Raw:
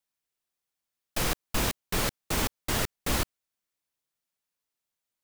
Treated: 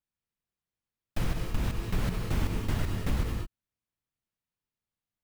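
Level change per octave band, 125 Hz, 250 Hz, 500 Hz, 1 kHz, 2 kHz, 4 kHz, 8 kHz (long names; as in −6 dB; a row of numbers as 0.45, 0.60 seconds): +5.5, +0.5, −5.0, −7.0, −7.5, −10.5, −14.0 decibels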